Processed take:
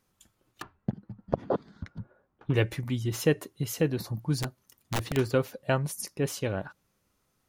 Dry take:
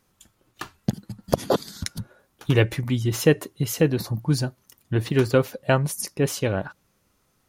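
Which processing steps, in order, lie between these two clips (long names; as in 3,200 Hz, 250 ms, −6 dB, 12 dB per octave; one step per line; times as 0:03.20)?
0:00.62–0:02.54: low-pass filter 1,400 Hz 12 dB per octave
0:04.42–0:05.17: wrap-around overflow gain 16 dB
level −6.5 dB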